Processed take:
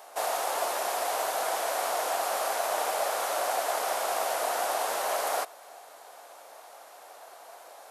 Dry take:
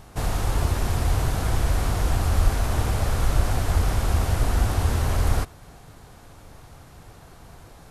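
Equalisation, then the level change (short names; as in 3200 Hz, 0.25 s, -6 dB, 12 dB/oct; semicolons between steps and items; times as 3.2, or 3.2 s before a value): ladder high-pass 540 Hz, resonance 50%; high shelf 9200 Hz +7 dB; +8.5 dB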